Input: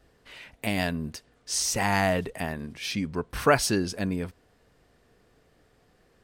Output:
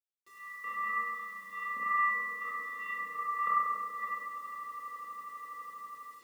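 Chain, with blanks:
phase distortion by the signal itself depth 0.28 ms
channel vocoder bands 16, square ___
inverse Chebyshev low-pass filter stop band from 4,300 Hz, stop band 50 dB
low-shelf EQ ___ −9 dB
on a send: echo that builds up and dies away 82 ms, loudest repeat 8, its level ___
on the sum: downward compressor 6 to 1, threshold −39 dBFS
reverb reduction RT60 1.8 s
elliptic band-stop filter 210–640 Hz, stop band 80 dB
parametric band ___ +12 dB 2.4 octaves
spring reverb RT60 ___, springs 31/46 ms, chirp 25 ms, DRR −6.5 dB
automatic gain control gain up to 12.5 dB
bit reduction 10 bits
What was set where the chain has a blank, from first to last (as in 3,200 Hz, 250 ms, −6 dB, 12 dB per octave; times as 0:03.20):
393 Hz, 200 Hz, −17.5 dB, 320 Hz, 1.7 s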